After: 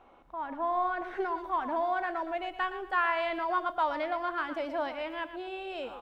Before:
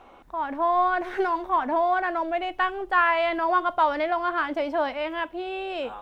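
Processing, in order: high shelf 4300 Hz -8 dB, from 1.38 s +2.5 dB; feedback echo 0.117 s, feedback 31%, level -11.5 dB; gain -7.5 dB

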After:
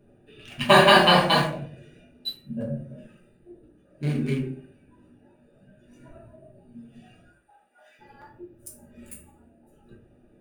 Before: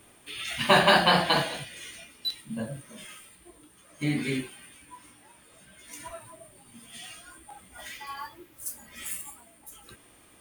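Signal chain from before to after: Wiener smoothing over 41 samples; 7.27–7.99 HPF 910 Hz 12 dB/oct; reverb RT60 0.55 s, pre-delay 5 ms, DRR -2.5 dB

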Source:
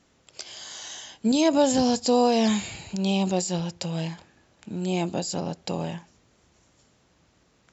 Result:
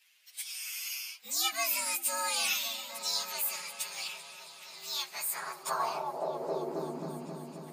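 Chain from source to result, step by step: inharmonic rescaling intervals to 120%; repeats that get brighter 0.267 s, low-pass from 200 Hz, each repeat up 1 oct, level -3 dB; high-pass sweep 2500 Hz -> 240 Hz, 5.06–7.08; gain +4.5 dB

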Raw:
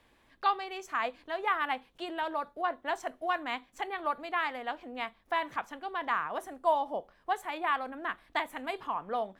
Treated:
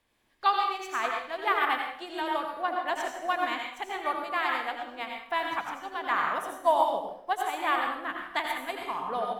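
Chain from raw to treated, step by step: high shelf 5000 Hz +8 dB; reverb RT60 0.80 s, pre-delay 73 ms, DRR -0.5 dB; upward expander 1.5:1, over -49 dBFS; gain +3.5 dB

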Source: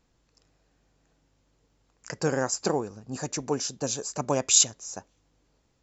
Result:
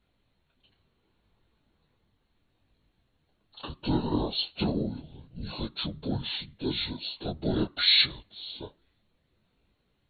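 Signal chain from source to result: whisperiser; speed mistake 78 rpm record played at 45 rpm; detuned doubles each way 25 cents; gain +1.5 dB

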